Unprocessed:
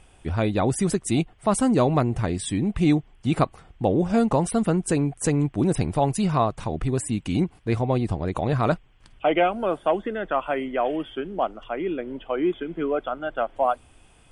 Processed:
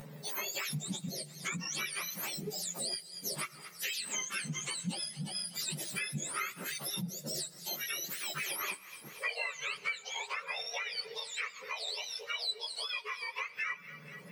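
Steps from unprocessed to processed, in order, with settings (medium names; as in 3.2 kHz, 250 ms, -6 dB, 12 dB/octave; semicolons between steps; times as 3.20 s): spectrum inverted on a logarithmic axis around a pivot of 1.2 kHz; feedback echo behind a high-pass 233 ms, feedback 56%, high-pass 1.5 kHz, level -20.5 dB; on a send at -20 dB: reverberation RT60 1.2 s, pre-delay 6 ms; on the sum: upward compressor, threshold -40 dBFS; in parallel at -10.5 dB: saturation -27.5 dBFS, distortion -7 dB; on the sum: dynamic bell 2.4 kHz, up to +5 dB, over -41 dBFS, Q 5.2; compression 6:1, threshold -32 dBFS, peak gain reduction 16.5 dB; three-phase chorus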